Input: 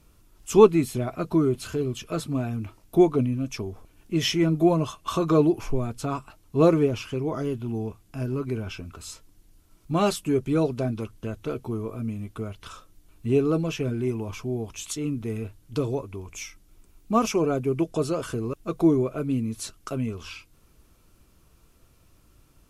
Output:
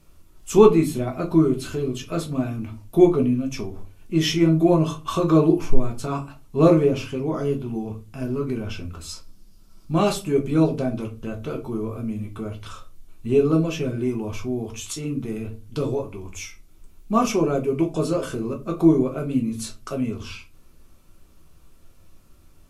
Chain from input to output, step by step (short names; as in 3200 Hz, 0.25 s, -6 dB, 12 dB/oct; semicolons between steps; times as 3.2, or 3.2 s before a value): 9.09–9.91 thirty-one-band EQ 200 Hz +8 dB, 1250 Hz +4 dB, 2000 Hz -4 dB, 5000 Hz +10 dB; shoebox room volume 120 m³, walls furnished, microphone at 1.1 m